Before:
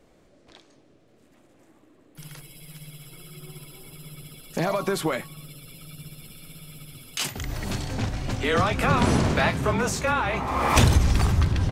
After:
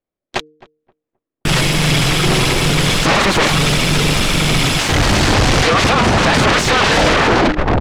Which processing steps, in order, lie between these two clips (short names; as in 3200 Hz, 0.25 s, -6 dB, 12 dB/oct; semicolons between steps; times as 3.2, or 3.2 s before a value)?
tape stop at the end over 1.76 s; gate -49 dBFS, range -44 dB; low shelf 460 Hz -3.5 dB; negative-ratio compressor -31 dBFS, ratio -0.5; sample leveller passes 5; soft clip -14 dBFS, distortion -22 dB; tempo 1.5×; de-hum 153.1 Hz, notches 3; sine folder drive 11 dB, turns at -14 dBFS; air absorption 87 m; on a send: darkening echo 0.263 s, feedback 22%, low-pass 1100 Hz, level -19 dB; on the sum: gain +6.5 dB